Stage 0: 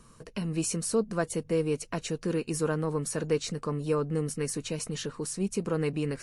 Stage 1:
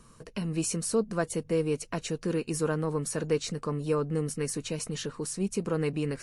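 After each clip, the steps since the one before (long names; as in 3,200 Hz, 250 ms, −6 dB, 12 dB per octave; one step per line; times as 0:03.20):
no processing that can be heard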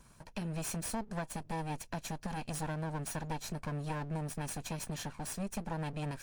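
lower of the sound and its delayed copy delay 1.2 ms
downward compressor 3 to 1, threshold −32 dBFS, peak gain reduction 7.5 dB
level −3 dB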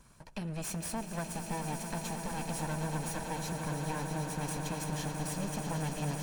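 echo that builds up and dies away 110 ms, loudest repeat 8, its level −11 dB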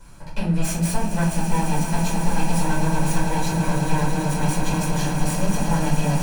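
rectangular room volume 280 cubic metres, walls furnished, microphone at 4.8 metres
level +3.5 dB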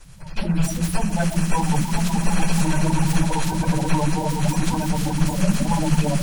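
spectral magnitudes quantised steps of 30 dB
highs frequency-modulated by the lows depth 0.11 ms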